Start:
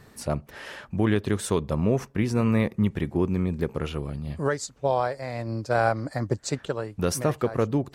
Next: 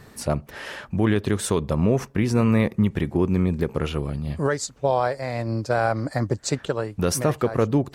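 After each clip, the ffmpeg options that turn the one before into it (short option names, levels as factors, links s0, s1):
-af "alimiter=limit=0.178:level=0:latency=1:release=86,volume=1.68"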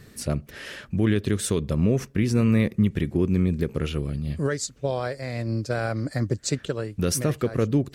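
-af "equalizer=f=880:w=1.3:g=-12.5"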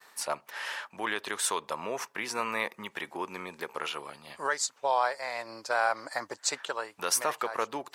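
-af "agate=range=0.0224:threshold=0.00562:ratio=3:detection=peak,highpass=f=910:t=q:w=4.8"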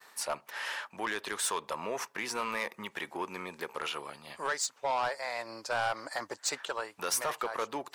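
-af "asoftclip=type=tanh:threshold=0.0631"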